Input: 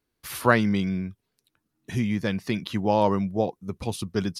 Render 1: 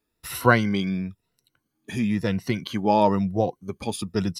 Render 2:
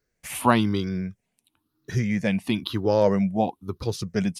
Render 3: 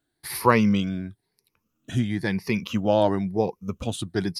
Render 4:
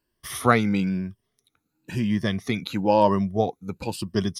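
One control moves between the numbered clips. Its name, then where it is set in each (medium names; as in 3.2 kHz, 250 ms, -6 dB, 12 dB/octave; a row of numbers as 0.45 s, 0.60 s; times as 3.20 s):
drifting ripple filter, ripples per octave: 2, 0.56, 0.83, 1.3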